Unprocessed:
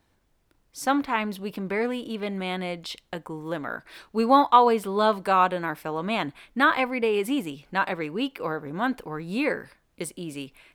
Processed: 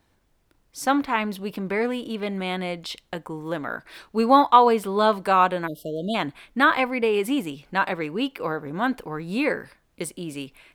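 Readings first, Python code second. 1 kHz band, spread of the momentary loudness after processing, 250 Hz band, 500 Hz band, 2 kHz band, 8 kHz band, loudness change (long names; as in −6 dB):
+2.0 dB, 15 LU, +2.0 dB, +2.0 dB, +2.0 dB, can't be measured, +2.0 dB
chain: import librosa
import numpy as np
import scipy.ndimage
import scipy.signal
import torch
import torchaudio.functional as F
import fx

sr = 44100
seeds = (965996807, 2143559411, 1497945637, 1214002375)

y = fx.spec_erase(x, sr, start_s=5.67, length_s=0.48, low_hz=700.0, high_hz=2800.0)
y = y * librosa.db_to_amplitude(2.0)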